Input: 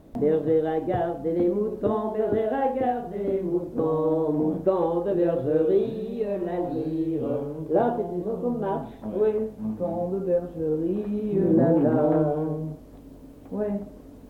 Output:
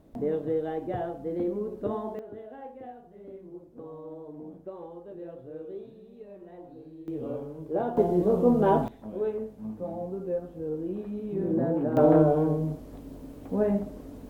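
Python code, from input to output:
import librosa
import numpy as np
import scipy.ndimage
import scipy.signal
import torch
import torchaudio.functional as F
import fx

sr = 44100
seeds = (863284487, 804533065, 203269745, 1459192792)

y = fx.gain(x, sr, db=fx.steps((0.0, -6.5), (2.19, -18.5), (7.08, -7.0), (7.97, 5.5), (8.88, -7.0), (11.97, 2.5)))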